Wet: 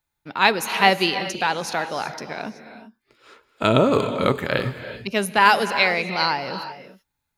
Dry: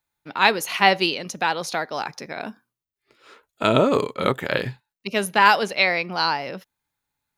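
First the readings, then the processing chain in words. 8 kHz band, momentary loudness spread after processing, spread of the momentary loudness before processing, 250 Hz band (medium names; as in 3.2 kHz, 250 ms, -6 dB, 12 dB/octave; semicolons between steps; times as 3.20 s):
+0.5 dB, 16 LU, 17 LU, +2.0 dB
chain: bass shelf 110 Hz +8 dB; gated-style reverb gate 410 ms rising, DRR 10 dB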